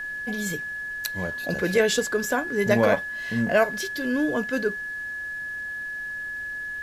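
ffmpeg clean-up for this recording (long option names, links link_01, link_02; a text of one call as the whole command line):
ffmpeg -i in.wav -af "bandreject=frequency=1700:width=30,agate=range=-21dB:threshold=-25dB" out.wav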